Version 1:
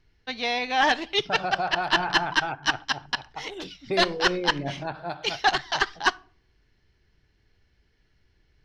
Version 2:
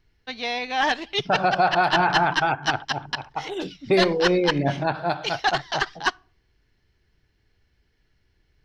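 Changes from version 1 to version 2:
first voice: send −6.5 dB
second voice +8.5 dB

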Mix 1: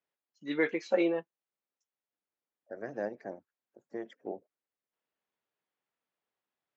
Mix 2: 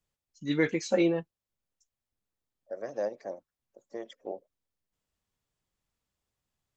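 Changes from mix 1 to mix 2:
second voice: add loudspeaker in its box 460–6,400 Hz, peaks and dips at 550 Hz +8 dB, 1,100 Hz +5 dB, 1,600 Hz −6 dB, 3,400 Hz +5 dB
master: remove band-pass filter 360–2,900 Hz

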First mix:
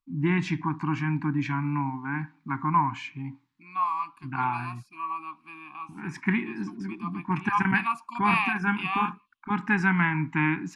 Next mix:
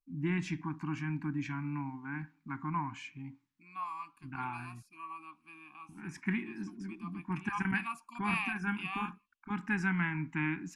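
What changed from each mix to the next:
master: add octave-band graphic EQ 125/250/500/1,000/2,000/4,000 Hz −9/−4/−10/−10/−5/−8 dB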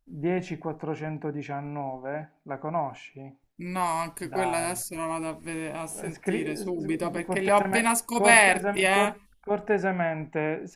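second voice: remove formant filter a
master: remove Chebyshev band-stop filter 300–990 Hz, order 3

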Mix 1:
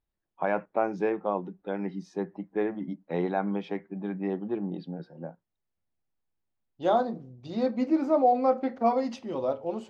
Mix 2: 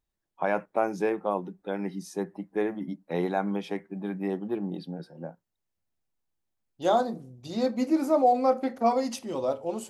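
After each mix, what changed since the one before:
master: remove high-frequency loss of the air 190 metres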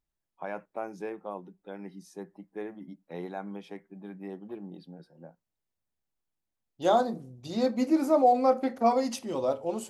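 first voice −10.0 dB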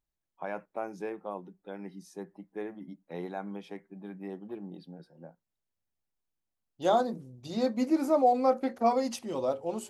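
reverb: off

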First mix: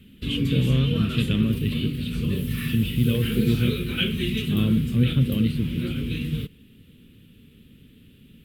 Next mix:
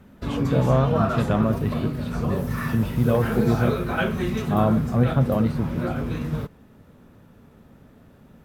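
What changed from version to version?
master: remove drawn EQ curve 270 Hz 0 dB, 470 Hz −6 dB, 700 Hz −29 dB, 1,700 Hz −7 dB, 3,000 Hz +14 dB, 6,000 Hz −6 dB, 9,100 Hz +5 dB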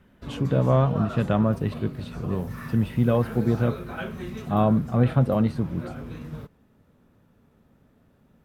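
background −9.5 dB

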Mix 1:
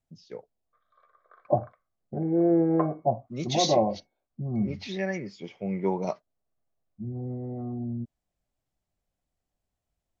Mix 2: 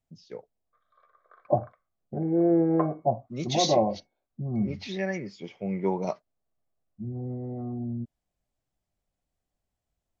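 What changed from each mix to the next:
nothing changed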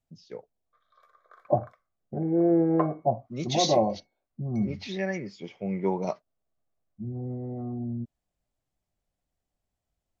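background: remove high-frequency loss of the air 340 metres

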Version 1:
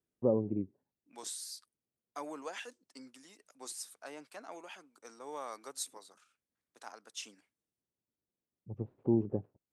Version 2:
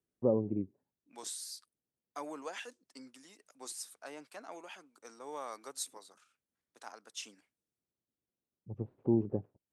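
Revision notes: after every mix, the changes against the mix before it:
nothing changed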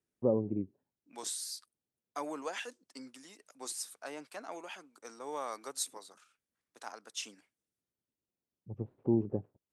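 second voice +3.5 dB

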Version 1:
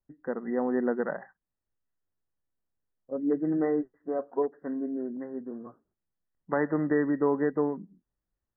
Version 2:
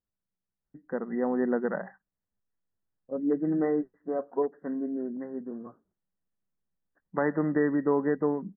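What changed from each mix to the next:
first voice: entry +0.65 s
master: add parametric band 190 Hz +8.5 dB 0.22 octaves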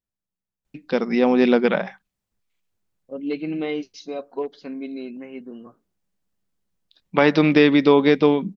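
first voice +10.5 dB
master: remove linear-phase brick-wall low-pass 2,000 Hz

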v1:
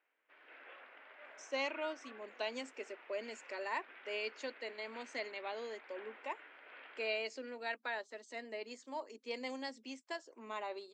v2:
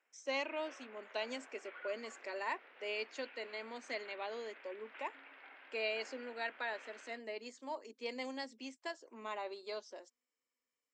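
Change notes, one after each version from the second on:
speech: entry −1.25 s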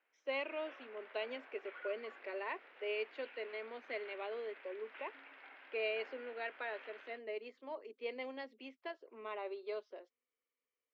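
speech: add loudspeaker in its box 330–3,100 Hz, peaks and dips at 410 Hz +6 dB, 900 Hz −6 dB, 1,700 Hz −4 dB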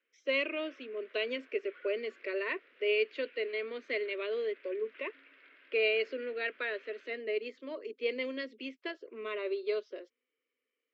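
speech +11.0 dB
master: add phaser with its sweep stopped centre 340 Hz, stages 4

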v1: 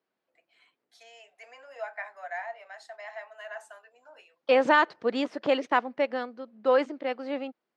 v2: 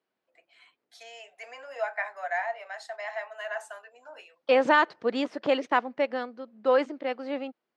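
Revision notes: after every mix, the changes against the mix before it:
first voice +6.0 dB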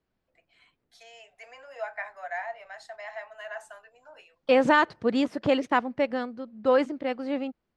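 first voice −4.0 dB
second voice: remove band-pass filter 340–6,400 Hz

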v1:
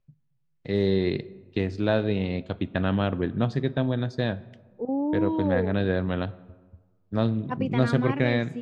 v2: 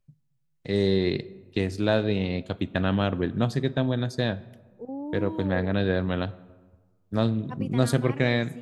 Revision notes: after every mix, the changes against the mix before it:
second voice −8.5 dB
master: remove high-frequency loss of the air 140 metres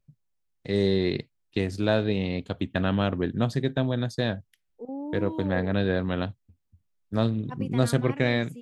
reverb: off

